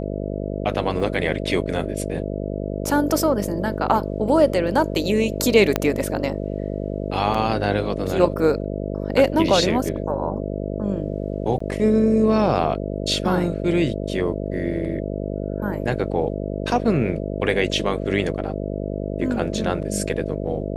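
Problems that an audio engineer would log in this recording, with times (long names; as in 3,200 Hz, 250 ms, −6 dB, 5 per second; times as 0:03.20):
mains buzz 50 Hz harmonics 13 −27 dBFS
0:01.00: drop-out 3 ms
0:05.76: click −4 dBFS
0:07.34: drop-out 4.9 ms
0:11.59–0:11.60: drop-out 14 ms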